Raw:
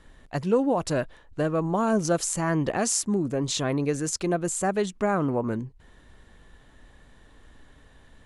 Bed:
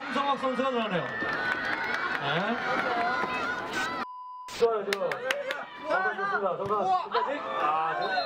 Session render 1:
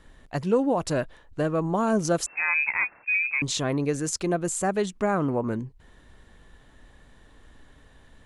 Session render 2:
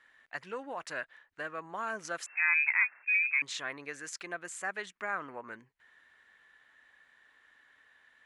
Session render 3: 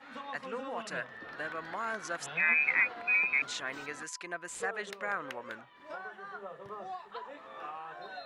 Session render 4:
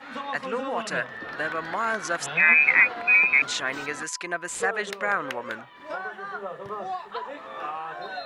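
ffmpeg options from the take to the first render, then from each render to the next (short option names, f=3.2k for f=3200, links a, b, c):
-filter_complex "[0:a]asettb=1/sr,asplit=3[a][b][c];[a]atrim=end=2.264[d];[b]atrim=start=2.26:end=3.42,asetpts=PTS-STARTPTS,afade=t=in:d=0.004:c=qsin,afade=t=out:st=1.156:d=0.004:c=qsin,lowpass=f=2.3k:t=q:w=0.5098,lowpass=f=2.3k:t=q:w=0.6013,lowpass=f=2.3k:t=q:w=0.9,lowpass=f=2.3k:t=q:w=2.563,afreqshift=-2700[e];[c]atrim=start=3.416[f];[d][e]acrossfade=d=0.004:c1=hsin:c2=qsin[g];[g][f]acrossfade=d=0.004:c1=qsin:c2=hsin"
-af "crystalizer=i=1.5:c=0,bandpass=f=1.8k:t=q:w=2.3:csg=0"
-filter_complex "[1:a]volume=-16dB[a];[0:a][a]amix=inputs=2:normalize=0"
-af "volume=9.5dB"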